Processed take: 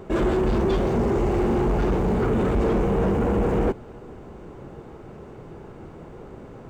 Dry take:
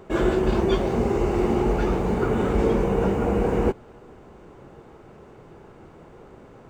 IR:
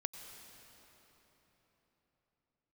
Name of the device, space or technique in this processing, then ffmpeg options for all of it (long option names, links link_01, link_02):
saturation between pre-emphasis and de-emphasis: -af "lowshelf=frequency=480:gain=5.5,highshelf=frequency=2400:gain=11.5,asoftclip=type=tanh:threshold=-19.5dB,highshelf=frequency=2400:gain=-11.5,volume=2dB"